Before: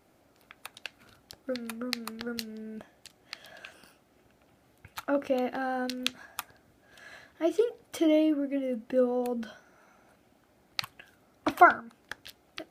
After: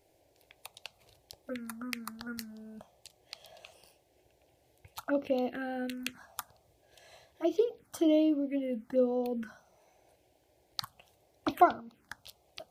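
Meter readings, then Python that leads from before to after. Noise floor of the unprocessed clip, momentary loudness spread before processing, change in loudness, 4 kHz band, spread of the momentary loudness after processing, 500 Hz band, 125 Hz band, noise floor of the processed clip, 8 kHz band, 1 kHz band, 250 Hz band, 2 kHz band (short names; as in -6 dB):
-65 dBFS, 21 LU, -3.5 dB, -6.0 dB, 23 LU, -2.5 dB, n/a, -70 dBFS, -3.0 dB, -5.0 dB, -1.5 dB, -10.0 dB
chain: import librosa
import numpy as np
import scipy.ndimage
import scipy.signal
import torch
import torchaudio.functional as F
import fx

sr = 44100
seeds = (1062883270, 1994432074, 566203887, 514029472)

y = fx.env_phaser(x, sr, low_hz=210.0, high_hz=1700.0, full_db=-25.5)
y = y * 10.0 ** (-1.0 / 20.0)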